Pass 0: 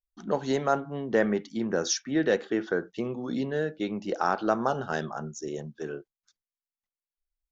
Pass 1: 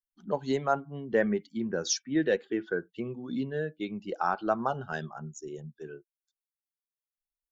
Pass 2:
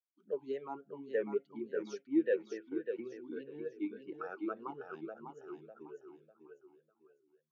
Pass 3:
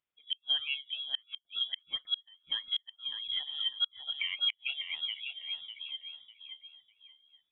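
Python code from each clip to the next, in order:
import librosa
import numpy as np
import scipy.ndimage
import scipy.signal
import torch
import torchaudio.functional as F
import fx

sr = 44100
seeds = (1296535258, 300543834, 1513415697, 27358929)

y1 = fx.bin_expand(x, sr, power=1.5)
y2 = fx.echo_feedback(y1, sr, ms=600, feedback_pct=32, wet_db=-6.5)
y2 = fx.vowel_sweep(y2, sr, vowels='e-u', hz=3.5)
y3 = fx.freq_invert(y2, sr, carrier_hz=3600)
y3 = fx.gate_flip(y3, sr, shuts_db=-28.0, range_db=-36)
y3 = y3 * 10.0 ** (8.0 / 20.0)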